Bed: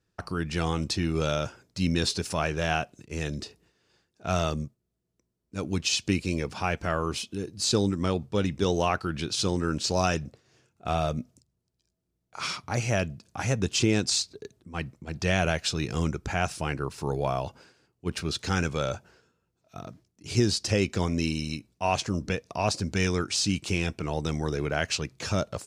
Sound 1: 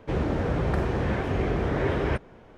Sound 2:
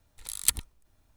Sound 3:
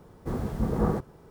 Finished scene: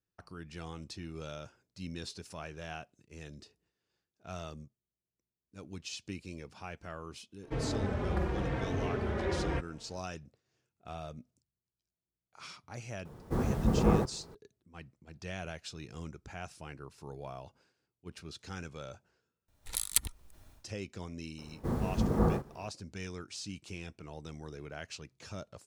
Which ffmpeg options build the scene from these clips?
-filter_complex "[3:a]asplit=2[s0][s1];[0:a]volume=0.158[s2];[1:a]asplit=2[s3][s4];[s4]adelay=3.9,afreqshift=-0.89[s5];[s3][s5]amix=inputs=2:normalize=1[s6];[2:a]dynaudnorm=f=130:g=3:m=5.01[s7];[s1]asplit=2[s8][s9];[s9]adelay=37,volume=0.501[s10];[s8][s10]amix=inputs=2:normalize=0[s11];[s2]asplit=2[s12][s13];[s12]atrim=end=19.484[s14];[s7]atrim=end=1.16,asetpts=PTS-STARTPTS,volume=0.562[s15];[s13]atrim=start=20.636[s16];[s6]atrim=end=2.57,asetpts=PTS-STARTPTS,volume=0.596,afade=t=in:d=0.004:c=hsin,afade=t=out:st=2.566:d=0.004:c=hsin,adelay=7430[s17];[s0]atrim=end=1.3,asetpts=PTS-STARTPTS,afade=t=in:d=0.004:c=hsin,afade=t=out:st=1.296:d=0.004:c=hsin,adelay=13050[s18];[s11]atrim=end=1.3,asetpts=PTS-STARTPTS,volume=0.708,afade=t=in:d=0.004:c=hsin,afade=t=out:st=1.296:d=0.004:c=hsin,adelay=21380[s19];[s14][s15]acrossfade=d=0.004:c1=hsin:c2=hsin[s20];[s20][s16]acrossfade=d=0.004:c1=hsin:c2=hsin[s21];[s21][s17][s18][s19]amix=inputs=4:normalize=0"

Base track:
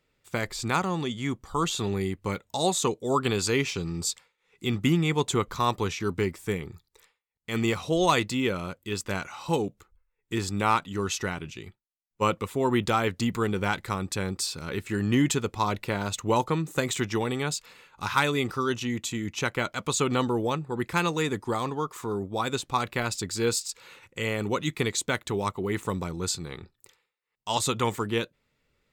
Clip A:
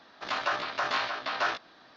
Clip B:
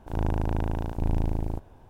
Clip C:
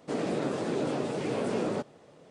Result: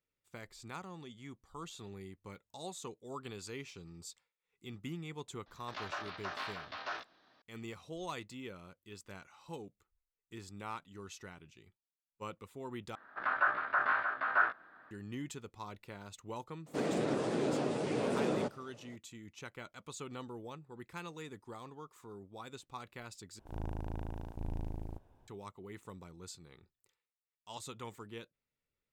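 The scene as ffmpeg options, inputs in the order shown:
-filter_complex "[1:a]asplit=2[s0][s1];[0:a]volume=0.106[s2];[s1]lowpass=f=1500:t=q:w=4.1[s3];[s2]asplit=3[s4][s5][s6];[s4]atrim=end=12.954[s7];[s3]atrim=end=1.96,asetpts=PTS-STARTPTS,volume=0.376[s8];[s5]atrim=start=14.906:end=23.394[s9];[2:a]atrim=end=1.89,asetpts=PTS-STARTPTS,volume=0.211[s10];[s6]atrim=start=25.276[s11];[s0]atrim=end=1.96,asetpts=PTS-STARTPTS,volume=0.251,afade=t=in:d=0.004:c=hsin,afade=t=out:st=1.956:d=0.004:c=hsin,adelay=5460[s12];[3:a]atrim=end=2.3,asetpts=PTS-STARTPTS,volume=0.708,afade=t=in:d=0.004:c=hsin,afade=t=out:st=2.296:d=0.004:c=hsin,adelay=16660[s13];[s7][s8]acrossfade=d=0.004:c1=hsin:c2=hsin[s14];[s14][s9]acrossfade=d=0.004:c1=hsin:c2=hsin[s15];[s15][s10]acrossfade=d=0.004:c1=hsin:c2=hsin[s16];[s16][s11]acrossfade=d=0.004:c1=hsin:c2=hsin[s17];[s17][s12][s13]amix=inputs=3:normalize=0"

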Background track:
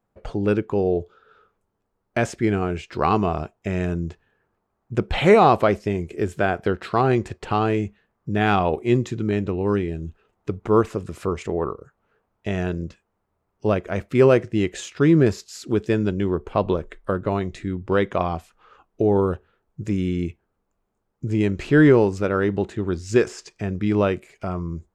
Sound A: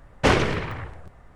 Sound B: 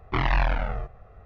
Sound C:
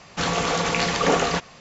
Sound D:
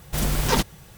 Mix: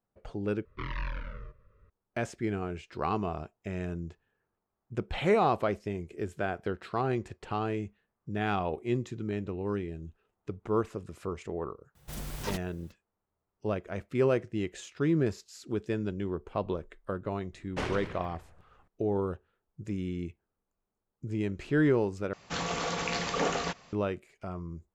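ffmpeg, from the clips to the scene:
-filter_complex "[0:a]volume=0.282[s0];[2:a]asuperstop=centerf=750:order=20:qfactor=2.4[s1];[s0]asplit=3[s2][s3][s4];[s2]atrim=end=0.654[s5];[s1]atrim=end=1.25,asetpts=PTS-STARTPTS,volume=0.237[s6];[s3]atrim=start=1.896:end=22.334[s7];[3:a]atrim=end=1.6,asetpts=PTS-STARTPTS,volume=0.335[s8];[s4]atrim=start=23.926[s9];[4:a]atrim=end=0.97,asetpts=PTS-STARTPTS,volume=0.168,afade=t=in:d=0.004:c=hsin,afade=t=out:st=0.966:d=0.004:c=hsin,adelay=11950[s10];[1:a]atrim=end=1.35,asetpts=PTS-STARTPTS,volume=0.168,afade=t=in:d=0.004:c=hsin,afade=t=out:st=1.346:d=0.004:c=hsin,adelay=17530[s11];[s5][s6]acrossfade=d=0.004:c1=hsin:c2=hsin[s12];[s12][s7]acrossfade=d=0.004:c1=hsin:c2=hsin[s13];[s13][s8]acrossfade=d=0.004:c1=hsin:c2=hsin[s14];[s14][s9]acrossfade=d=0.004:c1=hsin:c2=hsin[s15];[s15][s10][s11]amix=inputs=3:normalize=0"

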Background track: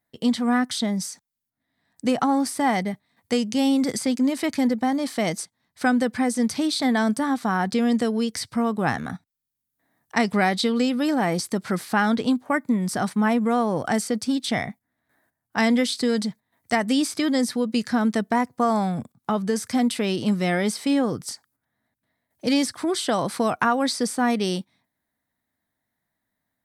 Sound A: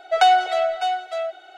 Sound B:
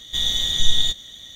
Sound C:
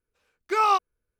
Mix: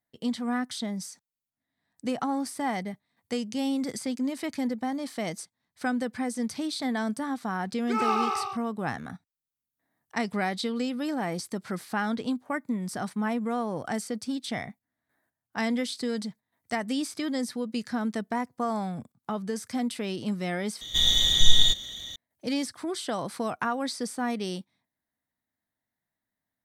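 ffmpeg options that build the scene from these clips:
-filter_complex "[0:a]volume=0.398[s0];[3:a]aecho=1:1:100|185|257.2|318.7|370.9|415.2:0.794|0.631|0.501|0.398|0.316|0.251[s1];[2:a]acompressor=mode=upward:threshold=0.0178:ratio=2.5:attack=1.5:release=24:knee=2.83:detection=peak[s2];[s0]asplit=2[s3][s4];[s3]atrim=end=20.814[s5];[s2]atrim=end=1.35[s6];[s4]atrim=start=22.156[s7];[s1]atrim=end=1.19,asetpts=PTS-STARTPTS,volume=0.398,afade=t=in:d=0.004:c=hsin,afade=t=out:st=1.186:d=0.004:c=hsin,adelay=325458S[s8];[s5][s6]acrossfade=d=0.004:c1=hsin:c2=hsin[s9];[s9][s7]acrossfade=d=0.004:c1=hsin:c2=hsin[s10];[s10][s8]amix=inputs=2:normalize=0"

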